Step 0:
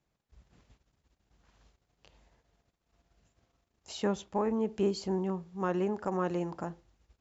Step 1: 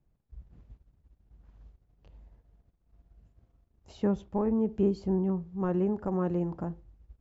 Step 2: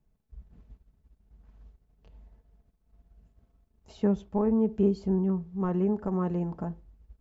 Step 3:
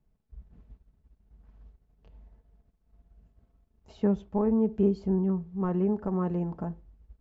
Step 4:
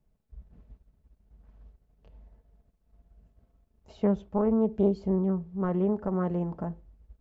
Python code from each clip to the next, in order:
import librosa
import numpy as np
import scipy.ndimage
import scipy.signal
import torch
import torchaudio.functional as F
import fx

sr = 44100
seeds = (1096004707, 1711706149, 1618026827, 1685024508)

y1 = fx.tilt_eq(x, sr, slope=-4.0)
y1 = y1 * librosa.db_to_amplitude(-4.0)
y2 = y1 + 0.38 * np.pad(y1, (int(4.6 * sr / 1000.0), 0))[:len(y1)]
y3 = fx.lowpass(y2, sr, hz=3600.0, slope=6)
y4 = fx.peak_eq(y3, sr, hz=570.0, db=4.5, octaves=0.41)
y4 = fx.doppler_dist(y4, sr, depth_ms=0.19)